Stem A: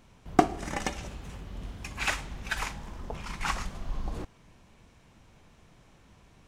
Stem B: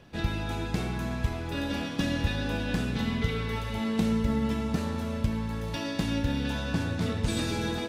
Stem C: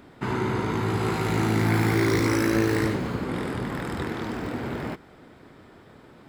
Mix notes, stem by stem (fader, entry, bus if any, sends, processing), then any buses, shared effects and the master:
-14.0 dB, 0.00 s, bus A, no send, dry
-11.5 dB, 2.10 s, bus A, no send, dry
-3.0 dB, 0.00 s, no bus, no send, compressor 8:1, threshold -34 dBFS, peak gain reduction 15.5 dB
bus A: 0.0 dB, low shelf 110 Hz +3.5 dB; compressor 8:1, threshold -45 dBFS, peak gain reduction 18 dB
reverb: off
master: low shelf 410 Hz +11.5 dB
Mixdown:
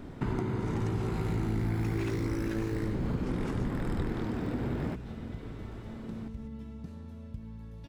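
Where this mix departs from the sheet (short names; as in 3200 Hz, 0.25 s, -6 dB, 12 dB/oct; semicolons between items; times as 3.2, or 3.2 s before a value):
stem A -14.0 dB -> -4.5 dB; stem B -11.5 dB -> -23.5 dB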